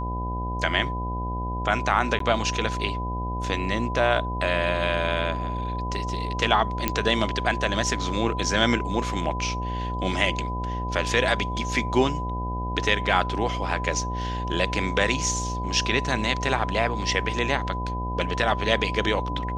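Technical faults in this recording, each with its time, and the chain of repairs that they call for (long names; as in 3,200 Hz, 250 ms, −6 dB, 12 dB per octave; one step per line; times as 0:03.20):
mains buzz 60 Hz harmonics 15 −30 dBFS
whistle 1,000 Hz −31 dBFS
0:02.19–0:02.20: drop-out 13 ms
0:06.88: click −6 dBFS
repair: click removal
notch filter 1,000 Hz, Q 30
hum removal 60 Hz, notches 15
repair the gap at 0:02.19, 13 ms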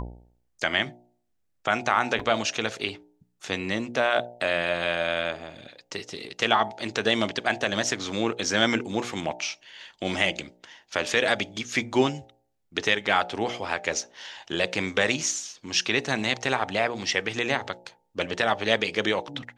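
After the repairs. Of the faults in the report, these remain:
none of them is left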